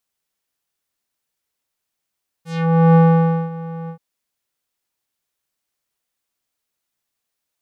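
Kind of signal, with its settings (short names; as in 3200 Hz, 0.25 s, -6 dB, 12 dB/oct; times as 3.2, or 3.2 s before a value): synth note square E3 12 dB/oct, low-pass 950 Hz, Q 1.3, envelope 4 oct, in 0.22 s, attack 0.496 s, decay 0.55 s, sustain -19 dB, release 0.09 s, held 1.44 s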